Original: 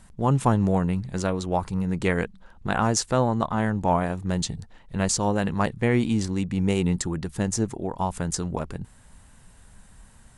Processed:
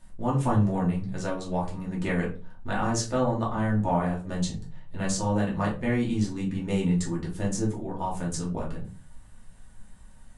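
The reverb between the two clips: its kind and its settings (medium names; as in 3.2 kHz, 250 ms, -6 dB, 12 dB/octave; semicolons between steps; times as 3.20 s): simulated room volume 170 m³, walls furnished, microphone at 2.6 m; trim -10 dB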